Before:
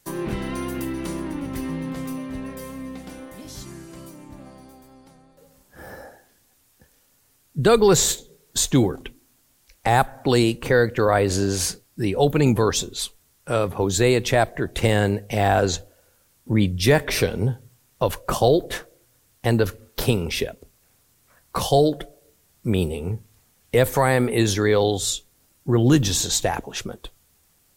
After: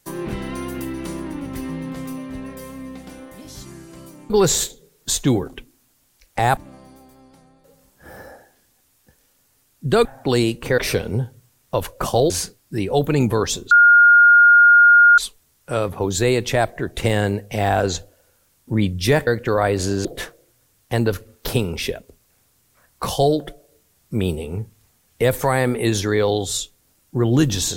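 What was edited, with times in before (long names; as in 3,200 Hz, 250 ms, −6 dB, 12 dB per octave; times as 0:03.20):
0:07.78–0:10.05: move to 0:04.30
0:10.78–0:11.56: swap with 0:17.06–0:18.58
0:12.97: insert tone 1,420 Hz −7 dBFS 1.47 s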